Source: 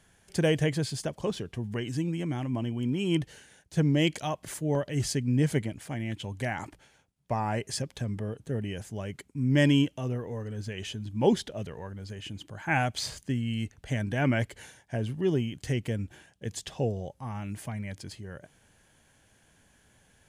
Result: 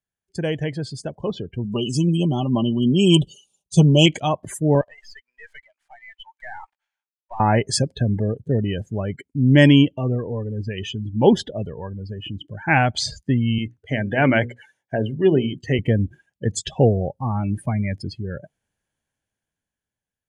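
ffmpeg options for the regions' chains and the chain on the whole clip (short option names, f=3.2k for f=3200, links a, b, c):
-filter_complex "[0:a]asettb=1/sr,asplit=3[a][b][c];[a]atrim=end=1.644[d];[b]atrim=start=1.64:end=4.06,asetpts=PTS-STARTPTS,afade=t=in:d=0.004:c=qsin,afade=t=out:st=2.416:d=0.004:c=qsin,asuperstop=centerf=1800:order=8:qfactor=1.4,highshelf=f=2.9k:g=9,aecho=1:1:5.1:0.51,atrim=end_sample=106722[e];[c]atrim=start=4.056[f];[d][e]acrossfade=d=0.004:c1=hsin:c2=qsin[g];[g][f]acrossfade=d=0.004:c1=qsin:c2=hsin,asettb=1/sr,asplit=3[h][i][j];[h]atrim=end=4.814[k];[i]atrim=start=4.81:end=7.4,asetpts=PTS-STARTPTS,afade=t=in:d=0.004:c=qsin,afade=t=out:st=2.586:d=0.004:c=qsin,highpass=f=830:w=0.5412,highpass=f=830:w=1.3066,aemphasis=mode=reproduction:type=50fm,aeval=exprs='(tanh(126*val(0)+0.65)-tanh(0.65))/126':c=same[l];[j]atrim=start=7.396[m];[k][l]acrossfade=d=0.004:c1=hsin:c2=qsin[n];[n][m]acrossfade=d=0.004:c1=qsin:c2=hsin,asettb=1/sr,asplit=3[o][p][q];[o]atrim=end=13.584[r];[p]atrim=start=13.58:end=15.79,asetpts=PTS-STARTPTS,afade=t=in:d=0.004:c=qsin,afade=t=out:st=2.206:d=0.004:c=qsin,highpass=93,bass=f=250:g=-5,treble=f=4k:g=-2,bandreject=f=60:t=h:w=6,bandreject=f=120:t=h:w=6,bandreject=f=180:t=h:w=6,bandreject=f=240:t=h:w=6,bandreject=f=300:t=h:w=6,bandreject=f=360:t=h:w=6,bandreject=f=420:t=h:w=6,bandreject=f=480:t=h:w=6,bandreject=f=540:t=h:w=6[s];[q]atrim=start=15.786[t];[r][s]acrossfade=d=0.004:c1=hsin:c2=qsin[u];[u][t]acrossfade=d=0.004:c1=qsin:c2=hsin,afftdn=nr=30:nf=-40,dynaudnorm=f=360:g=9:m=13.5dB"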